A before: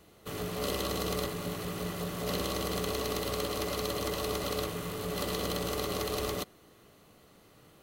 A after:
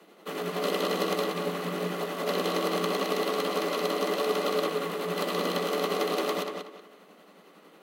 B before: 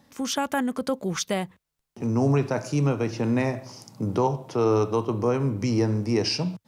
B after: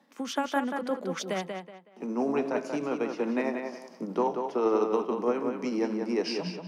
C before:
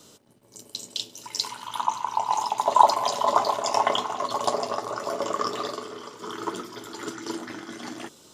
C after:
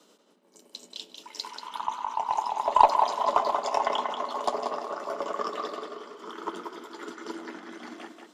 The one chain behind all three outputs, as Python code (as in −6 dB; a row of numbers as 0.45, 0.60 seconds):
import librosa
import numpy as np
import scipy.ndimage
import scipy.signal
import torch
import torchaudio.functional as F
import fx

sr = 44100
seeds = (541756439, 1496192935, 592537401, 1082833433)

y = scipy.signal.sosfilt(scipy.signal.butter(12, 170.0, 'highpass', fs=sr, output='sos'), x)
y = fx.bass_treble(y, sr, bass_db=-5, treble_db=-9)
y = fx.tremolo_shape(y, sr, shape='triangle', hz=11.0, depth_pct=40)
y = fx.cheby_harmonics(y, sr, harmonics=(6, 7, 8), levels_db=(-33, -28, -41), full_scale_db=-2.0)
y = fx.echo_tape(y, sr, ms=185, feedback_pct=30, wet_db=-5, lp_hz=5100.0, drive_db=4.0, wow_cents=13)
y = y * 10.0 ** (-30 / 20.0) / np.sqrt(np.mean(np.square(y)))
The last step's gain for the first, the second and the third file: +10.5, +1.0, 0.0 decibels